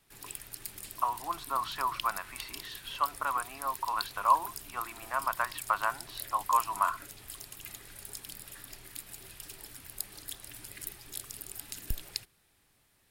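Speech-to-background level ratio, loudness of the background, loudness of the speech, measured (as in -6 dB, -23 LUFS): 10.0 dB, -42.5 LUFS, -32.5 LUFS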